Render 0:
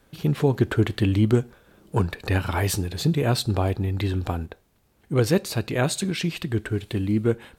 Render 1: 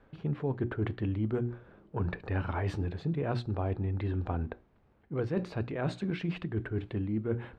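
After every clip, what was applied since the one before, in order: low-pass 1.8 kHz 12 dB/octave; hum notches 60/120/180/240/300/360 Hz; reverse; compression 4:1, threshold -30 dBFS, peak gain reduction 13 dB; reverse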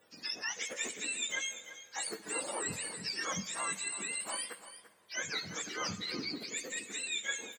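spectrum inverted on a logarithmic axis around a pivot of 880 Hz; delay 341 ms -13.5 dB; reverberation RT60 3.0 s, pre-delay 33 ms, DRR 16.5 dB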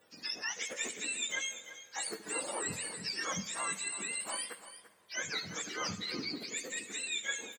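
crackle 130 per s -61 dBFS; delay 76 ms -20.5 dB

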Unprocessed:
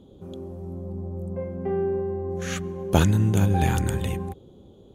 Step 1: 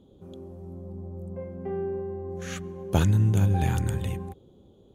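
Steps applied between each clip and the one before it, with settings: dynamic bell 110 Hz, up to +6 dB, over -33 dBFS, Q 1.7; trim -5.5 dB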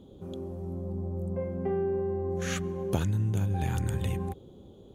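compression 6:1, threshold -30 dBFS, peak gain reduction 13 dB; trim +4.5 dB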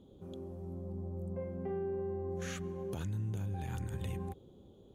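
peak limiter -23 dBFS, peak gain reduction 9 dB; trim -7 dB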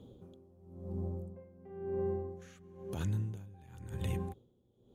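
mains buzz 120 Hz, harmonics 4, -61 dBFS; logarithmic tremolo 0.97 Hz, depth 21 dB; trim +4 dB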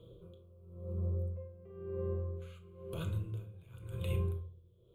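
static phaser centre 1.2 kHz, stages 8; on a send at -4 dB: reverberation RT60 0.50 s, pre-delay 6 ms; on the sum: trim +1 dB

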